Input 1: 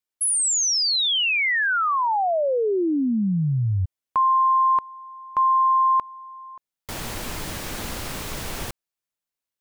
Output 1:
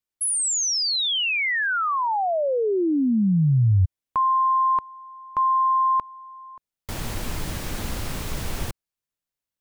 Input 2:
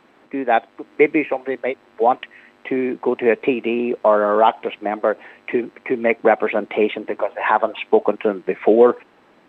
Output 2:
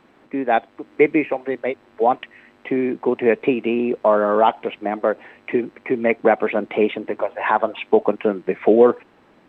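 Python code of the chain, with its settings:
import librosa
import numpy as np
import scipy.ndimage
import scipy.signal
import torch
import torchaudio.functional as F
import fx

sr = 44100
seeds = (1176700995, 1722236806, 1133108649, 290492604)

y = fx.low_shelf(x, sr, hz=200.0, db=8.5)
y = y * librosa.db_to_amplitude(-2.0)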